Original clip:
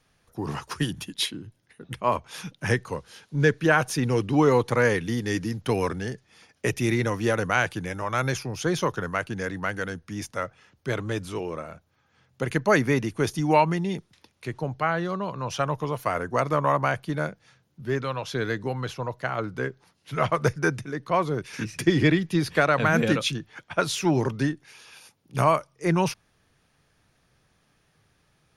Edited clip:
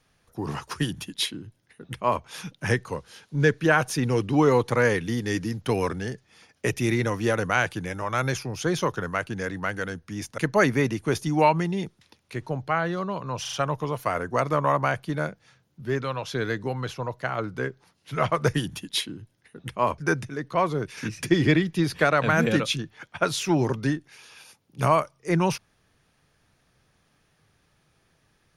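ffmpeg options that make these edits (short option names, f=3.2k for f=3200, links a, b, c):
-filter_complex "[0:a]asplit=7[a][b][c][d][e][f][g];[a]atrim=end=10.382[h];[b]atrim=start=12.498:end=15.572[i];[c]atrim=start=15.528:end=15.572[j];[d]atrim=start=15.528:end=15.572[k];[e]atrim=start=15.528:end=20.542[l];[f]atrim=start=0.788:end=2.232[m];[g]atrim=start=20.538[n];[h][i]acrossfade=d=0.004:c1=hsin:c2=hsin[o];[o][j]acrossfade=d=0.004:c1=hsin:c2=hsin[p];[p][k]acrossfade=d=0.004:c1=hsin:c2=hsin[q];[q][l]acrossfade=d=0.004:c1=hsin:c2=hsin[r];[r][m]acrossfade=d=0.004:c1=hsin:c2=hsin[s];[s][n]acrossfade=d=0.004:c1=hsin:c2=hsin"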